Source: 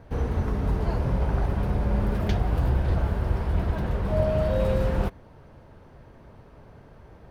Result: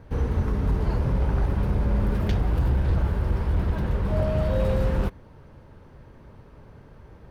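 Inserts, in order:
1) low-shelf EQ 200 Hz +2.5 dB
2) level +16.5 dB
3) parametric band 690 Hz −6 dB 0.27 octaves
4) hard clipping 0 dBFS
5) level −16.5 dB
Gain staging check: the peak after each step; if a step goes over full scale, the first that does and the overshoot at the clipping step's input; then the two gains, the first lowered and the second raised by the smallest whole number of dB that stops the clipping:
−9.5, +7.0, +6.5, 0.0, −16.5 dBFS
step 2, 6.5 dB
step 2 +9.5 dB, step 5 −9.5 dB

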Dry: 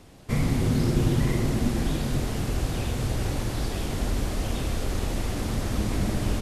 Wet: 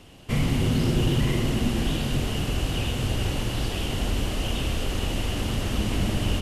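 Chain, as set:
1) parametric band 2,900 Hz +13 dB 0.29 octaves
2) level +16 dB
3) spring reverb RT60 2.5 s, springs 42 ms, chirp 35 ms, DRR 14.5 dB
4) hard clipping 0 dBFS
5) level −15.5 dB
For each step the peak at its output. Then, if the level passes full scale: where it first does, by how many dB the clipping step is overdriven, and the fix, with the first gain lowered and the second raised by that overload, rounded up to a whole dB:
−11.0, +5.0, +5.0, 0.0, −15.5 dBFS
step 2, 5.0 dB
step 2 +11 dB, step 5 −10.5 dB

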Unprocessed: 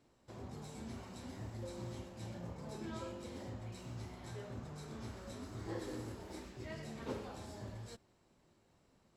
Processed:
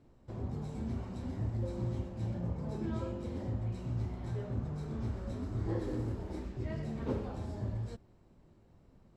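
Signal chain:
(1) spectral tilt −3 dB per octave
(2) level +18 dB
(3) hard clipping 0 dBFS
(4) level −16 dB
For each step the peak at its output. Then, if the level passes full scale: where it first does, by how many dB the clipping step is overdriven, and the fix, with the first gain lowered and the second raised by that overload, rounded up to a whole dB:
−24.0, −6.0, −6.0, −22.0 dBFS
no step passes full scale

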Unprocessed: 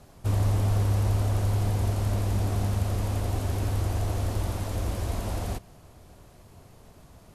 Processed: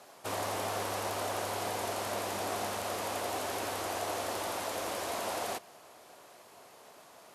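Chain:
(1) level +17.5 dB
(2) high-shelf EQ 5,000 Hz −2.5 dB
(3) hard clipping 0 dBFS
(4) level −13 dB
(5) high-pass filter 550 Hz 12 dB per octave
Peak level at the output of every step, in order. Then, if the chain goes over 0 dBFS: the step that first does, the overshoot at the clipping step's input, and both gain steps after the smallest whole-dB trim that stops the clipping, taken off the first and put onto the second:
+3.0, +3.0, 0.0, −13.0, −22.0 dBFS
step 1, 3.0 dB
step 1 +14.5 dB, step 4 −10 dB

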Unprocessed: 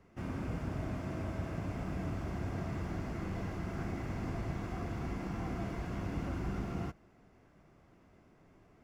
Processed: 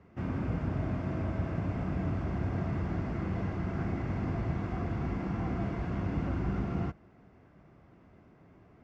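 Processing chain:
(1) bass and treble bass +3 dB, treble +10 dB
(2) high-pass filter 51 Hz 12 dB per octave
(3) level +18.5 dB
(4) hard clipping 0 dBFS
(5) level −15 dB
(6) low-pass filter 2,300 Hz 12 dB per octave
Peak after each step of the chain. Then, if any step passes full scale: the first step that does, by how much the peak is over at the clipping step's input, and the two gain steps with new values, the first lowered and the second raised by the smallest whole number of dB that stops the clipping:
−22.5, −23.5, −5.0, −5.0, −20.0, −20.5 dBFS
no step passes full scale

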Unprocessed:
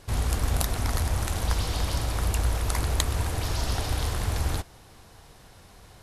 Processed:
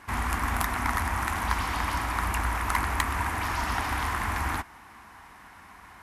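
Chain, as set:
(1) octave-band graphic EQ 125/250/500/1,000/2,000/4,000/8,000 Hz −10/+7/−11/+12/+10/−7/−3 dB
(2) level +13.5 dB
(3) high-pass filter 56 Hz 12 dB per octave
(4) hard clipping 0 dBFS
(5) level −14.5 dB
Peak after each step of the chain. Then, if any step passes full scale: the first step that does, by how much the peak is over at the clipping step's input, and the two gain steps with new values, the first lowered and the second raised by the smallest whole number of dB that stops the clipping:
−4.0, +9.5, +9.0, 0.0, −14.5 dBFS
step 2, 9.0 dB
step 2 +4.5 dB, step 5 −5.5 dB

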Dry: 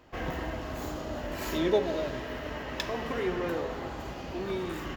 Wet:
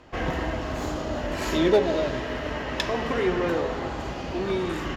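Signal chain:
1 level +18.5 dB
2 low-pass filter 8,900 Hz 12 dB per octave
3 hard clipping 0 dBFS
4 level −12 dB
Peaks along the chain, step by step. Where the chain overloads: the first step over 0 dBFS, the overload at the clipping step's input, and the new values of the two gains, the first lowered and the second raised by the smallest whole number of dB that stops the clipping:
+5.5, +5.0, 0.0, −12.0 dBFS
step 1, 5.0 dB
step 1 +13.5 dB, step 4 −7 dB

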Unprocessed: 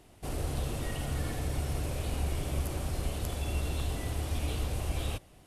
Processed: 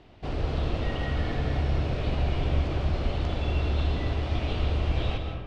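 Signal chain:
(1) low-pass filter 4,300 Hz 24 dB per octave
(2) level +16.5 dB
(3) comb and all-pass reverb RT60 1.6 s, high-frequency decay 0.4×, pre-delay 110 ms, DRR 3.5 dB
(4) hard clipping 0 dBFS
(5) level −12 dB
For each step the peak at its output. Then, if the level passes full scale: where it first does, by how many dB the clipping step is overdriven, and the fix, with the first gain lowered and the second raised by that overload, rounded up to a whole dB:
−20.5, −4.0, −2.5, −2.5, −14.5 dBFS
no step passes full scale

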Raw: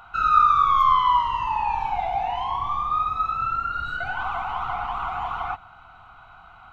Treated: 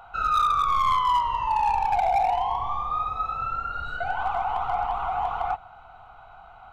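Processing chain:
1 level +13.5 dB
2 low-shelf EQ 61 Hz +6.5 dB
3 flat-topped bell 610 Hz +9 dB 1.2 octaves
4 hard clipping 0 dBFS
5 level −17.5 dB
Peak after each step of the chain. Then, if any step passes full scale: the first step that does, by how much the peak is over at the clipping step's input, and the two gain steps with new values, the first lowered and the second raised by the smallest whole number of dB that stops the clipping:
+7.5, +7.5, +8.0, 0.0, −17.5 dBFS
step 1, 8.0 dB
step 1 +5.5 dB, step 5 −9.5 dB

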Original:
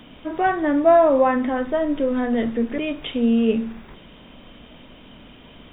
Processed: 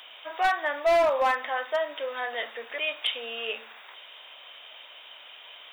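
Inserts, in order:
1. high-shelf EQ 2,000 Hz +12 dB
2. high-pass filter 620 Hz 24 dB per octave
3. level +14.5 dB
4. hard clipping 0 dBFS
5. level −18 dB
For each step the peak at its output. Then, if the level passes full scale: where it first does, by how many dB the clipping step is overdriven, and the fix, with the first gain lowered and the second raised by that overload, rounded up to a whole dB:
−3.5, −6.5, +8.0, 0.0, −18.0 dBFS
step 3, 8.0 dB
step 3 +6.5 dB, step 5 −10 dB

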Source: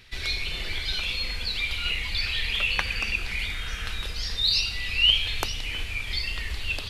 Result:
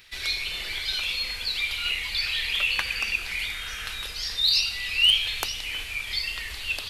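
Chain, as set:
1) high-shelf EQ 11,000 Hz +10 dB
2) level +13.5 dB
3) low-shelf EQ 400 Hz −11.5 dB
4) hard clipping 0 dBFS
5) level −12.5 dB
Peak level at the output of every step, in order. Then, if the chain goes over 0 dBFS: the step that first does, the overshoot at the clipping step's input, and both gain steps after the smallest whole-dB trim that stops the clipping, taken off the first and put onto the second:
−5.0, +8.5, +8.5, 0.0, −12.5 dBFS
step 2, 8.5 dB
step 2 +4.5 dB, step 5 −3.5 dB

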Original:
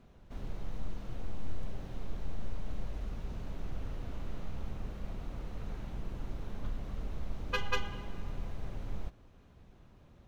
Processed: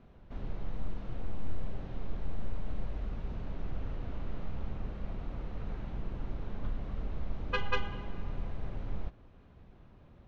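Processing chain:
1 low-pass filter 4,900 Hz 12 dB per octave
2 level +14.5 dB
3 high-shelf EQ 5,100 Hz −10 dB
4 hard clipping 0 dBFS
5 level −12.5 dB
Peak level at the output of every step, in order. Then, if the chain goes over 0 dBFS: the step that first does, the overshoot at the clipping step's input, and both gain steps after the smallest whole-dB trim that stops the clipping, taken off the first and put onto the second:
−18.5, −4.0, −4.5, −4.5, −17.0 dBFS
no step passes full scale

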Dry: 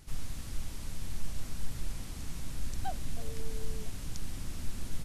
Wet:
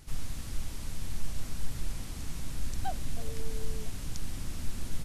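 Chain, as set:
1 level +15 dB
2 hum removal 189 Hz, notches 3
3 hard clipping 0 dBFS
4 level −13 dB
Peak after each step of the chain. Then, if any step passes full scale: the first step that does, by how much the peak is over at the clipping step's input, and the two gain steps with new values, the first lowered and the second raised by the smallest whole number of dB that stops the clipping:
−3.5, −3.5, −3.5, −16.5 dBFS
no step passes full scale

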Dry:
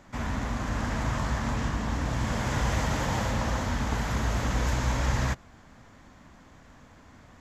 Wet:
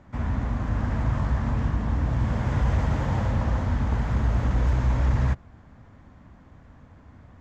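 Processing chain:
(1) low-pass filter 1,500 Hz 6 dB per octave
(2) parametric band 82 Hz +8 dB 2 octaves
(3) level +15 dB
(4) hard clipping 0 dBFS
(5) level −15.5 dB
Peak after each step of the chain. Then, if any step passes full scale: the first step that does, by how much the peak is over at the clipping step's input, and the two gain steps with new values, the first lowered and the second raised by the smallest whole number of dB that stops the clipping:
−14.5, −9.5, +5.5, 0.0, −15.5 dBFS
step 3, 5.5 dB
step 3 +9 dB, step 5 −9.5 dB

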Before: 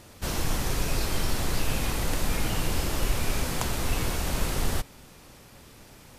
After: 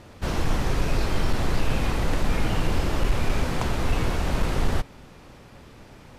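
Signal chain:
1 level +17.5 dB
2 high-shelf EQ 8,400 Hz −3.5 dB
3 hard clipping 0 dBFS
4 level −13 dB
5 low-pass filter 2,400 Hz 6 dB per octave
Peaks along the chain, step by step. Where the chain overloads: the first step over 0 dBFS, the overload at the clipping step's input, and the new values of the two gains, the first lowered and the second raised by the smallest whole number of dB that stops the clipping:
+9.5, +8.5, 0.0, −13.0, −13.0 dBFS
step 1, 8.5 dB
step 1 +8.5 dB, step 4 −4 dB

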